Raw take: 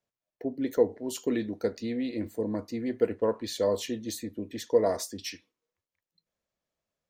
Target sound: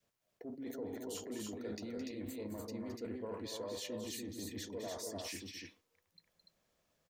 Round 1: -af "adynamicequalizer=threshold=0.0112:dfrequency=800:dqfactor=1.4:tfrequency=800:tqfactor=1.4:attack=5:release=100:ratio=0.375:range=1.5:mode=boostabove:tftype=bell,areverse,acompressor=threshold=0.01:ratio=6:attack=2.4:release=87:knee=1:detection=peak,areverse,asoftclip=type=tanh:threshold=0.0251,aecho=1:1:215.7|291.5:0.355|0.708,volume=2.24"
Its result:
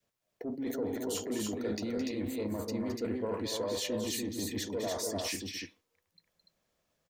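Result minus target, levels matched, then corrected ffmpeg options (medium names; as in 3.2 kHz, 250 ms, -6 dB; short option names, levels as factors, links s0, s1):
compression: peak gain reduction -9 dB
-af "adynamicequalizer=threshold=0.0112:dfrequency=800:dqfactor=1.4:tfrequency=800:tqfactor=1.4:attack=5:release=100:ratio=0.375:range=1.5:mode=boostabove:tftype=bell,areverse,acompressor=threshold=0.00282:ratio=6:attack=2.4:release=87:knee=1:detection=peak,areverse,asoftclip=type=tanh:threshold=0.0251,aecho=1:1:215.7|291.5:0.355|0.708,volume=2.24"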